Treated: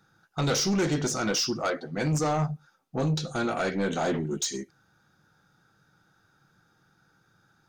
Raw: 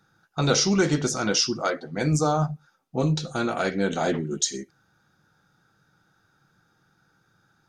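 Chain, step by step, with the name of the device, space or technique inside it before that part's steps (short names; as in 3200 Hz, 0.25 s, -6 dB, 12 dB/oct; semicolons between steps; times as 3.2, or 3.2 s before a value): saturation between pre-emphasis and de-emphasis (high shelf 8100 Hz +7 dB; soft clip -20.5 dBFS, distortion -11 dB; high shelf 8100 Hz -7 dB)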